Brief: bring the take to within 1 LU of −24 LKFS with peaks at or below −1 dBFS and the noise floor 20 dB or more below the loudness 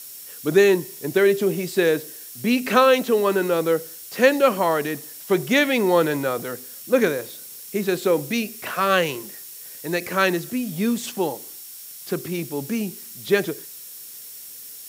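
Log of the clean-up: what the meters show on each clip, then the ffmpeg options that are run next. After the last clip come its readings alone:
interfering tone 5,500 Hz; level of the tone −52 dBFS; background noise floor −40 dBFS; target noise floor −42 dBFS; integrated loudness −21.5 LKFS; sample peak −3.0 dBFS; target loudness −24.0 LKFS
→ -af "bandreject=frequency=5500:width=30"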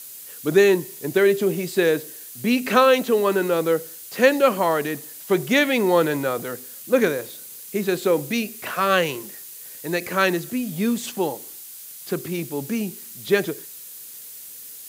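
interfering tone none found; background noise floor −40 dBFS; target noise floor −42 dBFS
→ -af "afftdn=noise_reduction=6:noise_floor=-40"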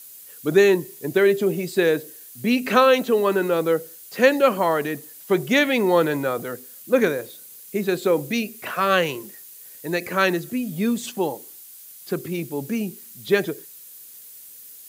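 background noise floor −44 dBFS; integrated loudness −21.5 LKFS; sample peak −3.5 dBFS; target loudness −24.0 LKFS
→ -af "volume=-2.5dB"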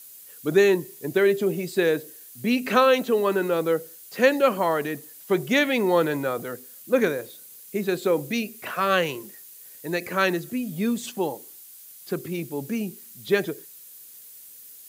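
integrated loudness −24.0 LKFS; sample peak −6.0 dBFS; background noise floor −46 dBFS

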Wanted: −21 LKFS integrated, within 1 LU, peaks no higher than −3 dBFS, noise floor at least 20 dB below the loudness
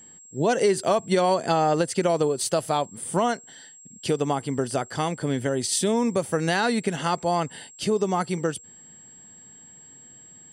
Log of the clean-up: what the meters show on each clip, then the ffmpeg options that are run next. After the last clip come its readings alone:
interfering tone 7,600 Hz; level of the tone −46 dBFS; integrated loudness −24.5 LKFS; sample peak −9.0 dBFS; target loudness −21.0 LKFS
→ -af "bandreject=frequency=7600:width=30"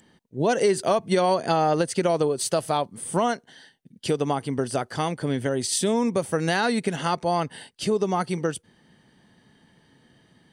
interfering tone none found; integrated loudness −24.5 LKFS; sample peak −9.0 dBFS; target loudness −21.0 LKFS
→ -af "volume=3.5dB"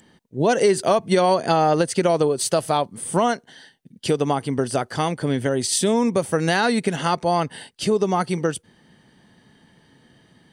integrated loudness −21.0 LKFS; sample peak −5.5 dBFS; background noise floor −59 dBFS

